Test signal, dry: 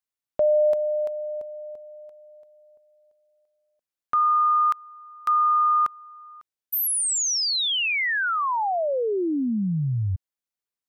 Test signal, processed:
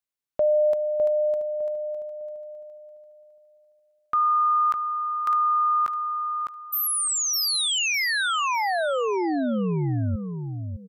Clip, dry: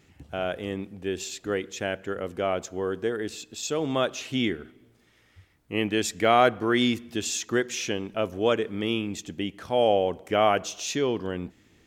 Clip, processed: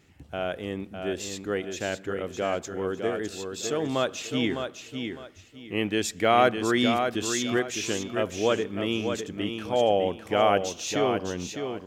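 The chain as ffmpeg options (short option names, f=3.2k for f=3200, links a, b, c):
-af "aecho=1:1:606|1212|1818:0.473|0.123|0.032,volume=-1dB"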